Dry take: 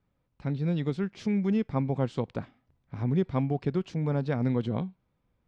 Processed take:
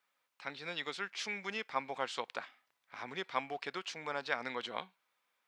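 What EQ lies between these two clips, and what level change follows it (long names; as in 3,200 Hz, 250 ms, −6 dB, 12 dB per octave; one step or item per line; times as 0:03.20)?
high-pass filter 1,300 Hz 12 dB per octave
+7.5 dB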